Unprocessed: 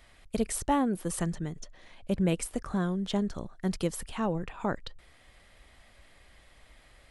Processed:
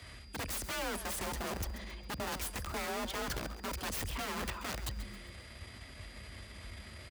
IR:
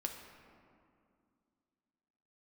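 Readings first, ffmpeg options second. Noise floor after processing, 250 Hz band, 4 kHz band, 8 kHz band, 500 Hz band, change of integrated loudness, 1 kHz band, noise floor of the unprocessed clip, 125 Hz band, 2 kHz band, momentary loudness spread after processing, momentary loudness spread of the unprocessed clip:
−51 dBFS, −14.5 dB, +2.5 dB, −2.5 dB, −8.0 dB, −8.0 dB, −5.0 dB, −59 dBFS, −9.0 dB, +3.0 dB, 12 LU, 11 LU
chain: -filter_complex "[0:a]equalizer=frequency=740:width_type=o:width=0.23:gain=-10.5,areverse,acompressor=threshold=-35dB:ratio=20,areverse,aeval=exprs='(mod(79.4*val(0)+1,2)-1)/79.4':channel_layout=same,aeval=exprs='(tanh(158*val(0)+0.5)-tanh(0.5))/158':channel_layout=same,afreqshift=42,aeval=exprs='val(0)+0.000355*sin(2*PI*4800*n/s)':channel_layout=same,asplit=5[link_01][link_02][link_03][link_04][link_05];[link_02]adelay=135,afreqshift=150,volume=-13dB[link_06];[link_03]adelay=270,afreqshift=300,volume=-21.2dB[link_07];[link_04]adelay=405,afreqshift=450,volume=-29.4dB[link_08];[link_05]adelay=540,afreqshift=600,volume=-37.5dB[link_09];[link_01][link_06][link_07][link_08][link_09]amix=inputs=5:normalize=0,volume=9.5dB"

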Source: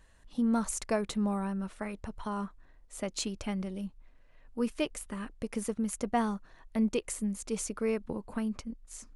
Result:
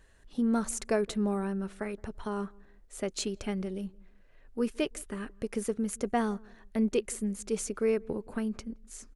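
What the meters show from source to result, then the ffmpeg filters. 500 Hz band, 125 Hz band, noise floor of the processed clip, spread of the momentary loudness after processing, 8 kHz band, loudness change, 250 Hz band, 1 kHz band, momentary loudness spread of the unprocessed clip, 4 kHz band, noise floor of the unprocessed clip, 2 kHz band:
+4.0 dB, +0.5 dB, −58 dBFS, 11 LU, 0.0 dB, +1.5 dB, +0.5 dB, −1.0 dB, 11 LU, 0.0 dB, −58 dBFS, +1.0 dB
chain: -filter_complex "[0:a]equalizer=frequency=400:width_type=o:width=0.33:gain=8,equalizer=frequency=1000:width_type=o:width=0.33:gain=-4,equalizer=frequency=1600:width_type=o:width=0.33:gain=3,asplit=2[link_01][link_02];[link_02]adelay=169,lowpass=frequency=900:poles=1,volume=-24dB,asplit=2[link_03][link_04];[link_04]adelay=169,lowpass=frequency=900:poles=1,volume=0.37[link_05];[link_03][link_05]amix=inputs=2:normalize=0[link_06];[link_01][link_06]amix=inputs=2:normalize=0"

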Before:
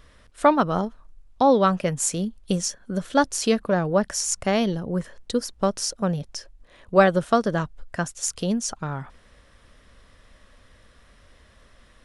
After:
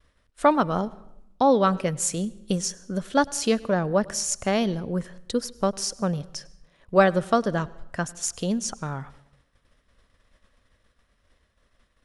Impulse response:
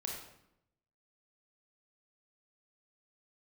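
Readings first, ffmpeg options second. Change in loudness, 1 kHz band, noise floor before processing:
−1.5 dB, −1.5 dB, −56 dBFS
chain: -filter_complex "[0:a]agate=range=-33dB:threshold=-44dB:ratio=3:detection=peak,asplit=2[link_01][link_02];[1:a]atrim=start_sample=2205,asetrate=42777,aresample=44100,adelay=100[link_03];[link_02][link_03]afir=irnorm=-1:irlink=0,volume=-21.5dB[link_04];[link_01][link_04]amix=inputs=2:normalize=0,volume=-1.5dB"

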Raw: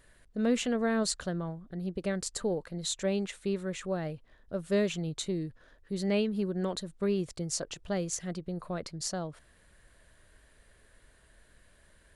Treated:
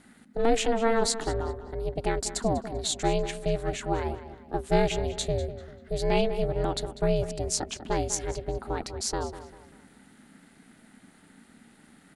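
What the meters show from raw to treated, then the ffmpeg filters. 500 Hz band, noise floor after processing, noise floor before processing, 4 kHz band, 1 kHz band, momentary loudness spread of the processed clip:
+5.5 dB, −57 dBFS, −63 dBFS, +4.5 dB, +11.5 dB, 10 LU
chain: -filter_complex "[0:a]asplit=2[link_01][link_02];[link_02]adelay=196,lowpass=frequency=4000:poles=1,volume=-12.5dB,asplit=2[link_03][link_04];[link_04]adelay=196,lowpass=frequency=4000:poles=1,volume=0.39,asplit=2[link_05][link_06];[link_06]adelay=196,lowpass=frequency=4000:poles=1,volume=0.39,asplit=2[link_07][link_08];[link_08]adelay=196,lowpass=frequency=4000:poles=1,volume=0.39[link_09];[link_01][link_03][link_05][link_07][link_09]amix=inputs=5:normalize=0,aeval=exprs='val(0)*sin(2*PI*230*n/s)':channel_layout=same,volume=7.5dB"

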